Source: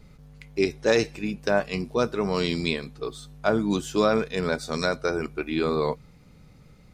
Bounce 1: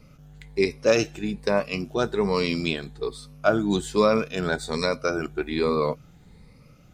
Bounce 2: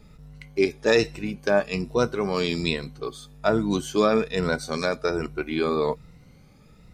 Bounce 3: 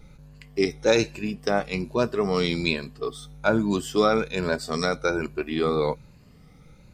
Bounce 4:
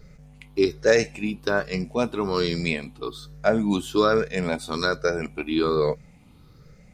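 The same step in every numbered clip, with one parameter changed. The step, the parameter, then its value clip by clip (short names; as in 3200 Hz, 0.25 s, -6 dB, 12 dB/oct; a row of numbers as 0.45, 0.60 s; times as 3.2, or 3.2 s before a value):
moving spectral ripple, ripples per octave: 0.92, 2, 1.4, 0.57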